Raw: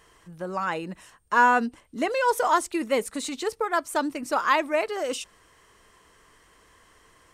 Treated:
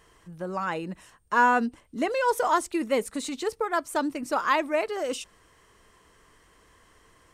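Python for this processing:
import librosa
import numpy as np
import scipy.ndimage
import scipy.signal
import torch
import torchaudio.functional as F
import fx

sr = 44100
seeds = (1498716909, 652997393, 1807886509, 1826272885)

y = fx.low_shelf(x, sr, hz=440.0, db=4.0)
y = F.gain(torch.from_numpy(y), -2.5).numpy()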